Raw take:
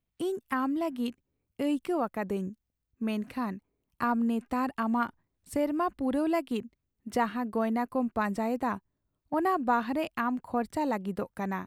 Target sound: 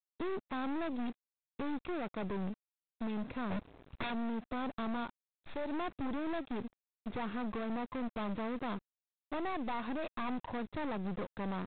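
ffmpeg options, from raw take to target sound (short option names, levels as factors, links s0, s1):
-filter_complex "[0:a]asplit=3[s0][s1][s2];[s0]afade=t=out:st=5.03:d=0.02[s3];[s1]aemphasis=mode=production:type=riaa,afade=t=in:st=5.03:d=0.02,afade=t=out:st=5.72:d=0.02[s4];[s2]afade=t=in:st=5.72:d=0.02[s5];[s3][s4][s5]amix=inputs=3:normalize=0,asplit=3[s6][s7][s8];[s6]afade=t=out:st=9.39:d=0.02[s9];[s7]highpass=f=400:p=1,afade=t=in:st=9.39:d=0.02,afade=t=out:st=10.28:d=0.02[s10];[s8]afade=t=in:st=10.28:d=0.02[s11];[s9][s10][s11]amix=inputs=3:normalize=0,equalizer=f=1900:w=1.8:g=-10,acompressor=threshold=0.0316:ratio=8,asplit=3[s12][s13][s14];[s12]afade=t=out:st=3.5:d=0.02[s15];[s13]aeval=exprs='0.0891*sin(PI/2*7.08*val(0)/0.0891)':c=same,afade=t=in:st=3.5:d=0.02,afade=t=out:st=4.09:d=0.02[s16];[s14]afade=t=in:st=4.09:d=0.02[s17];[s15][s16][s17]amix=inputs=3:normalize=0,aeval=exprs='(tanh(141*val(0)+0.6)-tanh(0.6))/141':c=same,aeval=exprs='val(0)*gte(abs(val(0)),0.00126)':c=same,asuperstop=centerf=3000:order=4:qfactor=7.4,volume=2.37" -ar 8000 -c:a adpcm_g726 -b:a 24k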